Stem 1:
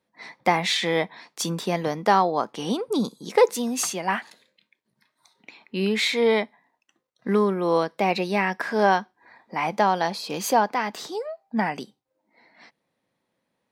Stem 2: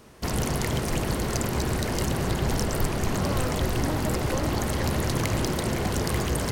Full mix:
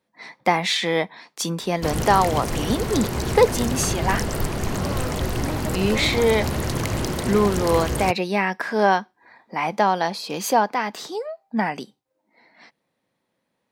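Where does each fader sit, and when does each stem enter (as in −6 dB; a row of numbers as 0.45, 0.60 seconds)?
+1.5, +1.0 decibels; 0.00, 1.60 seconds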